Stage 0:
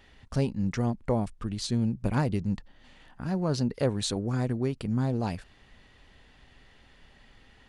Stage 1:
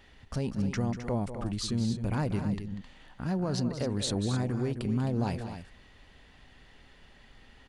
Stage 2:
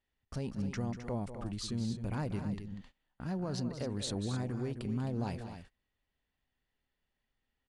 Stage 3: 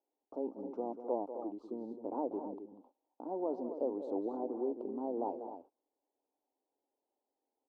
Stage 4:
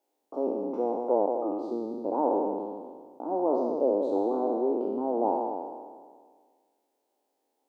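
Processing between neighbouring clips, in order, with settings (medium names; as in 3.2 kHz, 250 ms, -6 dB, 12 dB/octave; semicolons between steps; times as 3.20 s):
peak limiter -21 dBFS, peak gain reduction 8 dB; on a send: loudspeakers at several distances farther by 66 m -11 dB, 90 m -10 dB
gate -46 dBFS, range -23 dB; trim -6 dB
elliptic band-pass 290–900 Hz, stop band 40 dB; trim +6 dB
spectral sustain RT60 1.73 s; bass shelf 190 Hz -7.5 dB; trim +8.5 dB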